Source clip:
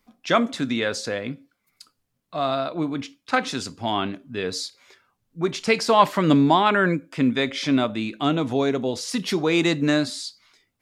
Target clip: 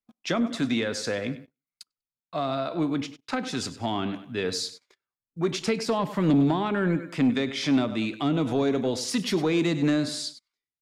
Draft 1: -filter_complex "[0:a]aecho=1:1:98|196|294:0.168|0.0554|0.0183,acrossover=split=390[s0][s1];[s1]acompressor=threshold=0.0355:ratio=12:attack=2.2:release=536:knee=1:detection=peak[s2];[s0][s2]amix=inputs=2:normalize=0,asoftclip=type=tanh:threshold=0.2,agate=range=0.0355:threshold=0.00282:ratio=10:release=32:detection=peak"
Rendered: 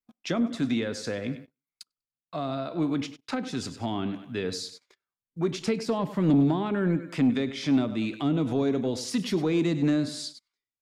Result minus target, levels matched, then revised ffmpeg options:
compression: peak gain reduction +5.5 dB
-filter_complex "[0:a]aecho=1:1:98|196|294:0.168|0.0554|0.0183,acrossover=split=390[s0][s1];[s1]acompressor=threshold=0.0708:ratio=12:attack=2.2:release=536:knee=1:detection=peak[s2];[s0][s2]amix=inputs=2:normalize=0,asoftclip=type=tanh:threshold=0.2,agate=range=0.0355:threshold=0.00282:ratio=10:release=32:detection=peak"

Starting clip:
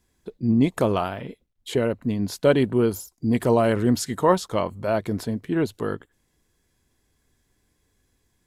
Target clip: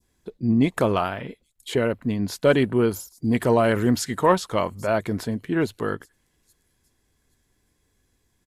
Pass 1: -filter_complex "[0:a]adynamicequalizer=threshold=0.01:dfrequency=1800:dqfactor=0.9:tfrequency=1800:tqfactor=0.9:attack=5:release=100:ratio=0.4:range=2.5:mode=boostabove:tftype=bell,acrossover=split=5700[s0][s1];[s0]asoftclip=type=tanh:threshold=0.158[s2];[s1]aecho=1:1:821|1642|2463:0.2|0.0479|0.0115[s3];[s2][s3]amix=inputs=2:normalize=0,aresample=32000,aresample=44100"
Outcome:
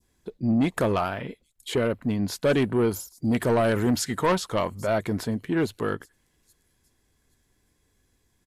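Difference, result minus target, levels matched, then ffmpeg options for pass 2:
saturation: distortion +16 dB
-filter_complex "[0:a]adynamicequalizer=threshold=0.01:dfrequency=1800:dqfactor=0.9:tfrequency=1800:tqfactor=0.9:attack=5:release=100:ratio=0.4:range=2.5:mode=boostabove:tftype=bell,acrossover=split=5700[s0][s1];[s0]asoftclip=type=tanh:threshold=0.631[s2];[s1]aecho=1:1:821|1642|2463:0.2|0.0479|0.0115[s3];[s2][s3]amix=inputs=2:normalize=0,aresample=32000,aresample=44100"

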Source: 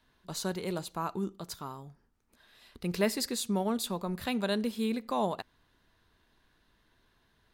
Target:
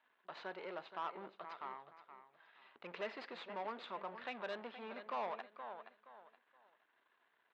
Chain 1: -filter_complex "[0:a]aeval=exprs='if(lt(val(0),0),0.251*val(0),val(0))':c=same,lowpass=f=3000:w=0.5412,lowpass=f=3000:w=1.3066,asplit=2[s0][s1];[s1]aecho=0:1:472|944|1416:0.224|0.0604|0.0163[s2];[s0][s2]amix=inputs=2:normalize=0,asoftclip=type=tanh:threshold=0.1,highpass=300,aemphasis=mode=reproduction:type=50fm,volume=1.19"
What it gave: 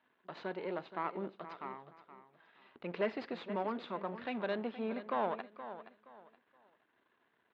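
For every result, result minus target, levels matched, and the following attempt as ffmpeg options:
saturation: distortion -14 dB; 250 Hz band +7.0 dB
-filter_complex "[0:a]aeval=exprs='if(lt(val(0),0),0.251*val(0),val(0))':c=same,lowpass=f=3000:w=0.5412,lowpass=f=3000:w=1.3066,asplit=2[s0][s1];[s1]aecho=0:1:472|944|1416:0.224|0.0604|0.0163[s2];[s0][s2]amix=inputs=2:normalize=0,asoftclip=type=tanh:threshold=0.0282,highpass=300,aemphasis=mode=reproduction:type=50fm,volume=1.19"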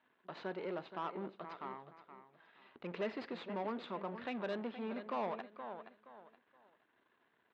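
250 Hz band +8.0 dB
-filter_complex "[0:a]aeval=exprs='if(lt(val(0),0),0.251*val(0),val(0))':c=same,lowpass=f=3000:w=0.5412,lowpass=f=3000:w=1.3066,asplit=2[s0][s1];[s1]aecho=0:1:472|944|1416:0.224|0.0604|0.0163[s2];[s0][s2]amix=inputs=2:normalize=0,asoftclip=type=tanh:threshold=0.0282,highpass=640,aemphasis=mode=reproduction:type=50fm,volume=1.19"

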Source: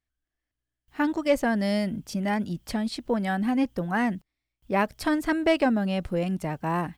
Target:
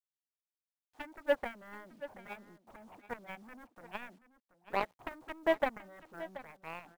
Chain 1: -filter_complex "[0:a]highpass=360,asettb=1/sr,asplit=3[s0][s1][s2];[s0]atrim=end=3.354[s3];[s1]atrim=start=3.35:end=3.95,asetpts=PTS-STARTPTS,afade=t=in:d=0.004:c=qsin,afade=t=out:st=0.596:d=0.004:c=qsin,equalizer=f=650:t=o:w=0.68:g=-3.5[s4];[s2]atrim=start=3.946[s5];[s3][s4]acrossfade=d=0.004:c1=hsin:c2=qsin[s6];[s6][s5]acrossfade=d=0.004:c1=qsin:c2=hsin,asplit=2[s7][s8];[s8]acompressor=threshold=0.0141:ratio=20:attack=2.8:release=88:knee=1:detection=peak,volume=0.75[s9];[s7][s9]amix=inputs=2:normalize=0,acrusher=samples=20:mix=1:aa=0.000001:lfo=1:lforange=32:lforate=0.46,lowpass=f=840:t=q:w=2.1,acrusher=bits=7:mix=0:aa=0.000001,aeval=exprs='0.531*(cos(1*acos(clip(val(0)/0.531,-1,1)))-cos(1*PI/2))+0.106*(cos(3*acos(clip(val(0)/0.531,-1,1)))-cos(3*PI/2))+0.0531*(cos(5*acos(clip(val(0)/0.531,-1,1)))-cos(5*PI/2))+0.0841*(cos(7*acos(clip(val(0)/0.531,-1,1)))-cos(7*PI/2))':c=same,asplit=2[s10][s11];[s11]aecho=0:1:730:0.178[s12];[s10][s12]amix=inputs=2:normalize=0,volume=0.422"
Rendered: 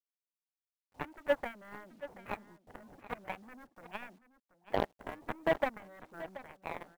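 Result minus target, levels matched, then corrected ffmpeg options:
decimation with a swept rate: distortion +7 dB
-filter_complex "[0:a]highpass=360,asettb=1/sr,asplit=3[s0][s1][s2];[s0]atrim=end=3.354[s3];[s1]atrim=start=3.35:end=3.95,asetpts=PTS-STARTPTS,afade=t=in:d=0.004:c=qsin,afade=t=out:st=0.596:d=0.004:c=qsin,equalizer=f=650:t=o:w=0.68:g=-3.5[s4];[s2]atrim=start=3.946[s5];[s3][s4]acrossfade=d=0.004:c1=hsin:c2=qsin[s6];[s6][s5]acrossfade=d=0.004:c1=qsin:c2=hsin,asplit=2[s7][s8];[s8]acompressor=threshold=0.0141:ratio=20:attack=2.8:release=88:knee=1:detection=peak,volume=0.75[s9];[s7][s9]amix=inputs=2:normalize=0,acrusher=samples=8:mix=1:aa=0.000001:lfo=1:lforange=12.8:lforate=0.46,lowpass=f=840:t=q:w=2.1,acrusher=bits=7:mix=0:aa=0.000001,aeval=exprs='0.531*(cos(1*acos(clip(val(0)/0.531,-1,1)))-cos(1*PI/2))+0.106*(cos(3*acos(clip(val(0)/0.531,-1,1)))-cos(3*PI/2))+0.0531*(cos(5*acos(clip(val(0)/0.531,-1,1)))-cos(5*PI/2))+0.0841*(cos(7*acos(clip(val(0)/0.531,-1,1)))-cos(7*PI/2))':c=same,asplit=2[s10][s11];[s11]aecho=0:1:730:0.178[s12];[s10][s12]amix=inputs=2:normalize=0,volume=0.422"

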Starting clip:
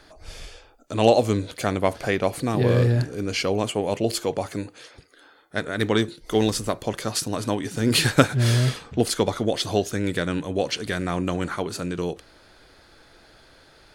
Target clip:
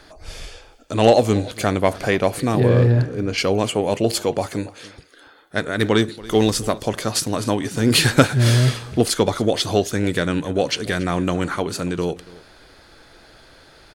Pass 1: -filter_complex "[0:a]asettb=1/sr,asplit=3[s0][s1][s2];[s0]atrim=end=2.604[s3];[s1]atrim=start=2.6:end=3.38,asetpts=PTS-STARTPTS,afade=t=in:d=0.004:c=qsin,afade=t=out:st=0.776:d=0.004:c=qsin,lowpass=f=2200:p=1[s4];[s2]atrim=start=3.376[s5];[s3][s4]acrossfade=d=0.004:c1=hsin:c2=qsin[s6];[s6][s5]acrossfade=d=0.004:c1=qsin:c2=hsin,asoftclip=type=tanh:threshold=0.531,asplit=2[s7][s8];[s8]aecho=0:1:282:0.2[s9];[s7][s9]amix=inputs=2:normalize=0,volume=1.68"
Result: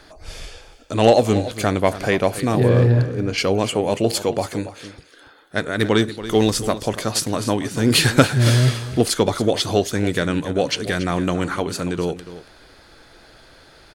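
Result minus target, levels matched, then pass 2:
echo-to-direct +6.5 dB
-filter_complex "[0:a]asettb=1/sr,asplit=3[s0][s1][s2];[s0]atrim=end=2.604[s3];[s1]atrim=start=2.6:end=3.38,asetpts=PTS-STARTPTS,afade=t=in:d=0.004:c=qsin,afade=t=out:st=0.776:d=0.004:c=qsin,lowpass=f=2200:p=1[s4];[s2]atrim=start=3.376[s5];[s3][s4]acrossfade=d=0.004:c1=hsin:c2=qsin[s6];[s6][s5]acrossfade=d=0.004:c1=qsin:c2=hsin,asoftclip=type=tanh:threshold=0.531,asplit=2[s7][s8];[s8]aecho=0:1:282:0.0944[s9];[s7][s9]amix=inputs=2:normalize=0,volume=1.68"

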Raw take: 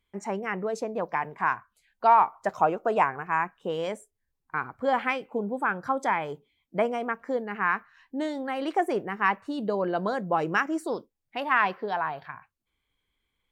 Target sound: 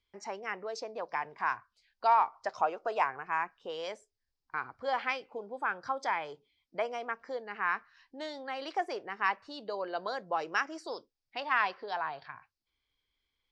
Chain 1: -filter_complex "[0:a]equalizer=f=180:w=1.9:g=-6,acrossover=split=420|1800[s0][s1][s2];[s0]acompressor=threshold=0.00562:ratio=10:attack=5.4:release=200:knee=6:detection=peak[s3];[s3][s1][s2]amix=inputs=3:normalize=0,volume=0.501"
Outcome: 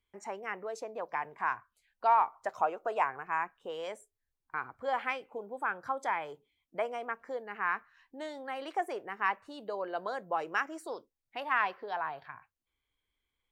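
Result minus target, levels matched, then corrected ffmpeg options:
4 kHz band -4.5 dB
-filter_complex "[0:a]lowpass=f=5000:t=q:w=4.2,equalizer=f=180:w=1.9:g=-6,acrossover=split=420|1800[s0][s1][s2];[s0]acompressor=threshold=0.00562:ratio=10:attack=5.4:release=200:knee=6:detection=peak[s3];[s3][s1][s2]amix=inputs=3:normalize=0,volume=0.501"

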